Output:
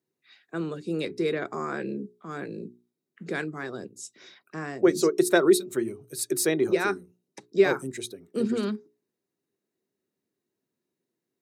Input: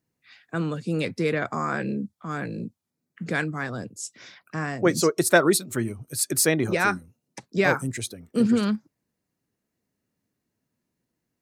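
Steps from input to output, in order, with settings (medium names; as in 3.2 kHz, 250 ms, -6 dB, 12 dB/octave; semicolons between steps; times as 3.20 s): high-pass 150 Hz 12 dB/octave; hum notches 60/120/180/240/300/360/420 Hz; small resonant body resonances 380/3800 Hz, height 13 dB, ringing for 45 ms; trim -6 dB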